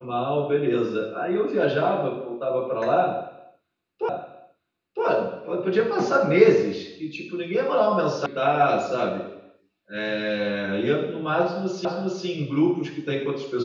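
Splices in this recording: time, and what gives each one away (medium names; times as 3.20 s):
4.09 s: repeat of the last 0.96 s
8.26 s: sound stops dead
11.85 s: repeat of the last 0.41 s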